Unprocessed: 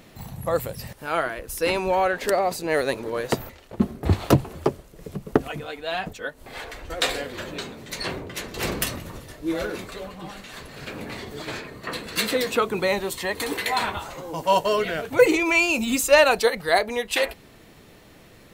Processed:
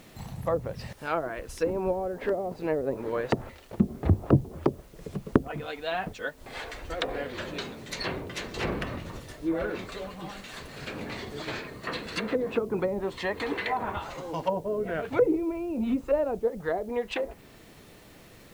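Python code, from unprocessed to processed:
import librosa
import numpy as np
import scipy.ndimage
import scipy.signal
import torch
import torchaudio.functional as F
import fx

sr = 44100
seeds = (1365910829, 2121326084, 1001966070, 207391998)

p1 = fx.env_lowpass_down(x, sr, base_hz=400.0, full_db=-18.0)
p2 = fx.quant_dither(p1, sr, seeds[0], bits=8, dither='triangular')
p3 = p1 + F.gain(torch.from_numpy(p2), -11.0).numpy()
y = F.gain(torch.from_numpy(p3), -4.0).numpy()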